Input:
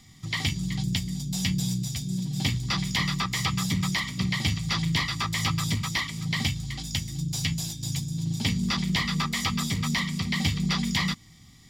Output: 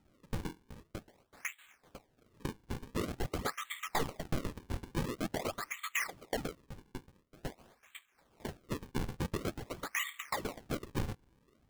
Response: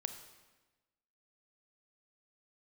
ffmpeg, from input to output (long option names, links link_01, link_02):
-filter_complex "[0:a]asuperpass=centerf=1700:order=8:qfactor=1.2,acrusher=samples=39:mix=1:aa=0.000001:lfo=1:lforange=62.4:lforate=0.47,asettb=1/sr,asplit=3[link_01][link_02][link_03];[link_01]atrim=end=3.944[link_04];[link_02]atrim=start=3.94:end=4.45,asetpts=PTS-STARTPTS,afade=type=in:duration=0.004:curve=qsin,afade=type=out:start_time=0.506:duration=0.004:curve=qsin,aeval=exprs='0.0841*(cos(1*acos(clip(val(0)/0.0841,-1,1)))-cos(1*PI/2))+0.0211*(cos(6*acos(clip(val(0)/0.0841,-1,1)))-cos(6*PI/2))':channel_layout=same[link_05];[link_03]atrim=start=4.446[link_06];[link_04][link_05]acrossfade=duration=0.004:curve1=hsin:curve2=qsin[link_07];[link_07][link_06]acrossfade=duration=0.004:curve1=qsin:curve2=hsin,volume=-3dB"